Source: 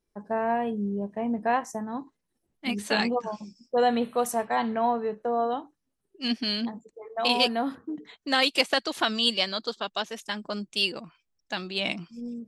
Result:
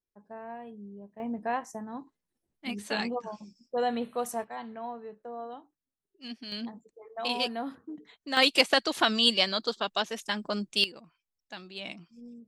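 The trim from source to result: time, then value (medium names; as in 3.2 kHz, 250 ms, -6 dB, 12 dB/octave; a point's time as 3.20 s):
-15.5 dB
from 1.20 s -6 dB
from 4.44 s -13.5 dB
from 6.52 s -7 dB
from 8.37 s +1 dB
from 10.84 s -11 dB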